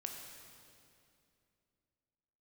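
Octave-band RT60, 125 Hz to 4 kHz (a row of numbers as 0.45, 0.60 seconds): 3.0, 3.1, 2.8, 2.4, 2.3, 2.2 seconds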